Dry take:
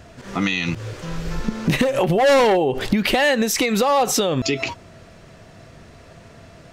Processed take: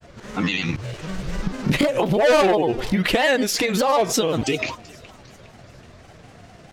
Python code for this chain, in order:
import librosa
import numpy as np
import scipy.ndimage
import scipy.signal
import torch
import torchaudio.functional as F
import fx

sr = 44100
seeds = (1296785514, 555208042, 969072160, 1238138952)

y = fx.echo_thinned(x, sr, ms=403, feedback_pct=52, hz=420.0, wet_db=-22.0)
y = fx.granulator(y, sr, seeds[0], grain_ms=100.0, per_s=20.0, spray_ms=18.0, spread_st=3)